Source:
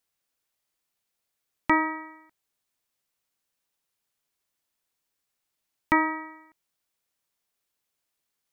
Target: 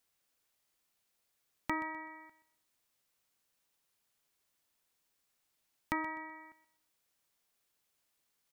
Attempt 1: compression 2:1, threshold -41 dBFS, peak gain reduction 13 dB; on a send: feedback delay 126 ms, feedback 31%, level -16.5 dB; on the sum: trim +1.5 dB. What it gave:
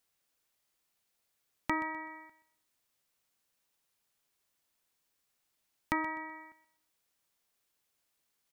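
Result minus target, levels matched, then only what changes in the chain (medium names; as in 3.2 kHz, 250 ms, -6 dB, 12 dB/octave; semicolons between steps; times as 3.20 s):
compression: peak gain reduction -3 dB
change: compression 2:1, threshold -47 dBFS, peak gain reduction 16 dB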